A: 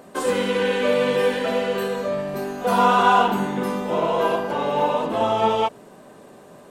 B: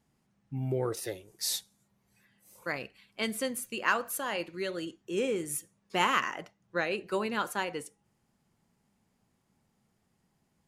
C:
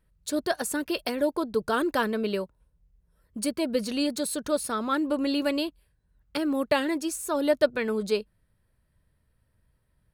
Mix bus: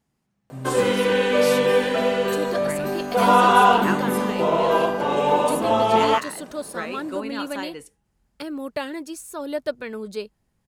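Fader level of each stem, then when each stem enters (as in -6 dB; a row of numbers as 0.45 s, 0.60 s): +1.5 dB, -1.0 dB, -4.5 dB; 0.50 s, 0.00 s, 2.05 s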